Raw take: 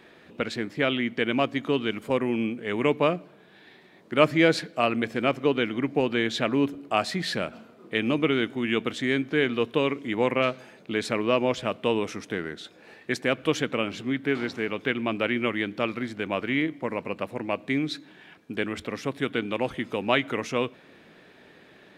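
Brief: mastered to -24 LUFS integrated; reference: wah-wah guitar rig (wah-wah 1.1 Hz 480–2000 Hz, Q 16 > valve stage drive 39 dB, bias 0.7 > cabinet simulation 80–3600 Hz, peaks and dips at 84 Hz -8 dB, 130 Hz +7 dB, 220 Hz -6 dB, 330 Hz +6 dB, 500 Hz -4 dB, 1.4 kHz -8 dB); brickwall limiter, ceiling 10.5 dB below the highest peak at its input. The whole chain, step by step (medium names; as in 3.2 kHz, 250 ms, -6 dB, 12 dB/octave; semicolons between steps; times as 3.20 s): peak limiter -13.5 dBFS; wah-wah 1.1 Hz 480–2000 Hz, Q 16; valve stage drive 39 dB, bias 0.7; cabinet simulation 80–3600 Hz, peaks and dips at 84 Hz -8 dB, 130 Hz +7 dB, 220 Hz -6 dB, 330 Hz +6 dB, 500 Hz -4 dB, 1.4 kHz -8 dB; trim +28 dB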